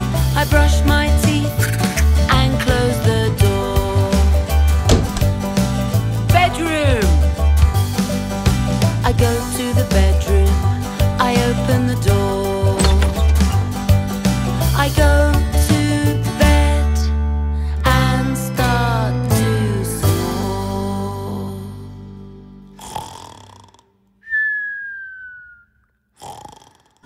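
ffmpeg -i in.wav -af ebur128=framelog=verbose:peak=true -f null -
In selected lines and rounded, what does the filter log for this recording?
Integrated loudness:
  I:         -16.6 LUFS
  Threshold: -27.4 LUFS
Loudness range:
  LRA:        10.2 LU
  Threshold: -37.3 LUFS
  LRA low:   -25.9 LUFS
  LRA high:  -15.7 LUFS
True peak:
  Peak:       -1.5 dBFS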